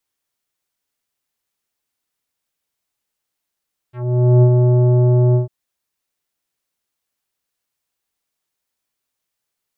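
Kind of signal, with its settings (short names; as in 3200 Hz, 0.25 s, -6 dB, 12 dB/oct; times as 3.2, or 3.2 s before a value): synth note square B2 24 dB/oct, low-pass 650 Hz, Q 0.85, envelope 2.5 oct, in 0.11 s, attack 0.494 s, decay 0.07 s, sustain -3.5 dB, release 0.13 s, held 1.42 s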